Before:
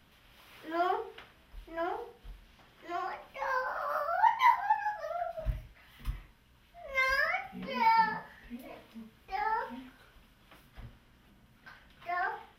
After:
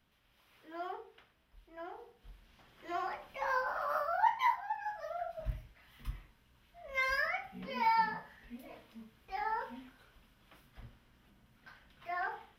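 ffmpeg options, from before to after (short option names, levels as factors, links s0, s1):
-af "volume=1.78,afade=t=in:st=1.95:d=0.98:silence=0.298538,afade=t=out:st=3.95:d=0.75:silence=0.354813,afade=t=in:st=4.7:d=0.27:silence=0.501187"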